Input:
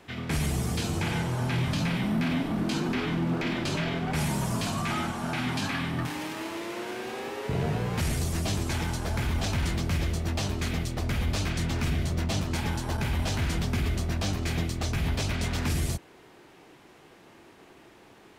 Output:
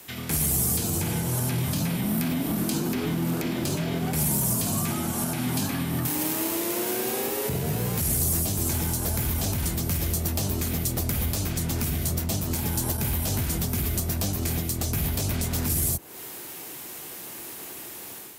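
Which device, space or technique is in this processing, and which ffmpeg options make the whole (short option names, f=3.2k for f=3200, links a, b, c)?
FM broadcast chain: -filter_complex "[0:a]highpass=52,dynaudnorm=f=550:g=3:m=8dB,acrossover=split=640|1300[a][b][c];[a]acompressor=threshold=-20dB:ratio=4[d];[b]acompressor=threshold=-42dB:ratio=4[e];[c]acompressor=threshold=-42dB:ratio=4[f];[d][e][f]amix=inputs=3:normalize=0,aemphasis=mode=production:type=50fm,alimiter=limit=-18.5dB:level=0:latency=1:release=274,asoftclip=type=hard:threshold=-20dB,lowpass=f=15k:w=0.5412,lowpass=f=15k:w=1.3066,aemphasis=mode=production:type=50fm"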